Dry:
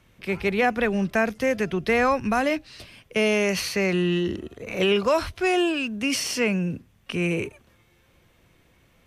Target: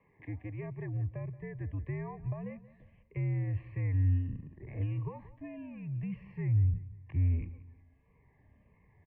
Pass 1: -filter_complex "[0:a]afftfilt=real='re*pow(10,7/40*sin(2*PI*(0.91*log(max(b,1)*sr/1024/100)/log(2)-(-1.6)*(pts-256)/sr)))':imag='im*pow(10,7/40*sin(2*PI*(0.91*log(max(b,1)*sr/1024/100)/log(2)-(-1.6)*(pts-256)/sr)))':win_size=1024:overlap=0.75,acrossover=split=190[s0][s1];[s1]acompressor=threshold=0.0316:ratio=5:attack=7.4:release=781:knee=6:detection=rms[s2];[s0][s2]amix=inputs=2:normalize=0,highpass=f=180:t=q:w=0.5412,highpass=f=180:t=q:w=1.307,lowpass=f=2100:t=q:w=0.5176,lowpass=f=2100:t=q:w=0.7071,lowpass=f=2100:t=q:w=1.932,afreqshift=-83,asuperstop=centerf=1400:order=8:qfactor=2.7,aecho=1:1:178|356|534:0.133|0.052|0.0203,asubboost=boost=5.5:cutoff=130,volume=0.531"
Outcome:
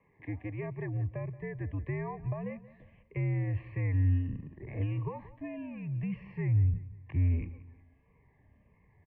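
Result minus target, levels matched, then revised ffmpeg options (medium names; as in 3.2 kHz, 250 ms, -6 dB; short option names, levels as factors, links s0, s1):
compression: peak gain reduction -5 dB
-filter_complex "[0:a]afftfilt=real='re*pow(10,7/40*sin(2*PI*(0.91*log(max(b,1)*sr/1024/100)/log(2)-(-1.6)*(pts-256)/sr)))':imag='im*pow(10,7/40*sin(2*PI*(0.91*log(max(b,1)*sr/1024/100)/log(2)-(-1.6)*(pts-256)/sr)))':win_size=1024:overlap=0.75,acrossover=split=190[s0][s1];[s1]acompressor=threshold=0.015:ratio=5:attack=7.4:release=781:knee=6:detection=rms[s2];[s0][s2]amix=inputs=2:normalize=0,highpass=f=180:t=q:w=0.5412,highpass=f=180:t=q:w=1.307,lowpass=f=2100:t=q:w=0.5176,lowpass=f=2100:t=q:w=0.7071,lowpass=f=2100:t=q:w=1.932,afreqshift=-83,asuperstop=centerf=1400:order=8:qfactor=2.7,aecho=1:1:178|356|534:0.133|0.052|0.0203,asubboost=boost=5.5:cutoff=130,volume=0.531"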